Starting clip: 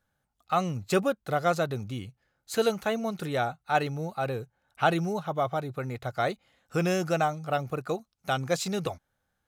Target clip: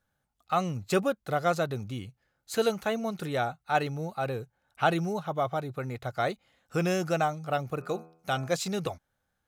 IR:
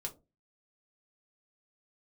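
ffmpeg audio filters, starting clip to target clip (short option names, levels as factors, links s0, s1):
-filter_complex "[0:a]asplit=3[s0][s1][s2];[s0]afade=t=out:st=7.8:d=0.02[s3];[s1]bandreject=f=81.61:t=h:w=4,bandreject=f=163.22:t=h:w=4,bandreject=f=244.83:t=h:w=4,bandreject=f=326.44:t=h:w=4,bandreject=f=408.05:t=h:w=4,bandreject=f=489.66:t=h:w=4,bandreject=f=571.27:t=h:w=4,bandreject=f=652.88:t=h:w=4,bandreject=f=734.49:t=h:w=4,bandreject=f=816.1:t=h:w=4,bandreject=f=897.71:t=h:w=4,bandreject=f=979.32:t=h:w=4,bandreject=f=1060.93:t=h:w=4,bandreject=f=1142.54:t=h:w=4,bandreject=f=1224.15:t=h:w=4,bandreject=f=1305.76:t=h:w=4,bandreject=f=1387.37:t=h:w=4,bandreject=f=1468.98:t=h:w=4,bandreject=f=1550.59:t=h:w=4,bandreject=f=1632.2:t=h:w=4,bandreject=f=1713.81:t=h:w=4,bandreject=f=1795.42:t=h:w=4,bandreject=f=1877.03:t=h:w=4,bandreject=f=1958.64:t=h:w=4,bandreject=f=2040.25:t=h:w=4,bandreject=f=2121.86:t=h:w=4,bandreject=f=2203.47:t=h:w=4,bandreject=f=2285.08:t=h:w=4,bandreject=f=2366.69:t=h:w=4,bandreject=f=2448.3:t=h:w=4,bandreject=f=2529.91:t=h:w=4,bandreject=f=2611.52:t=h:w=4,afade=t=in:st=7.8:d=0.02,afade=t=out:st=8.52:d=0.02[s4];[s2]afade=t=in:st=8.52:d=0.02[s5];[s3][s4][s5]amix=inputs=3:normalize=0,volume=0.891"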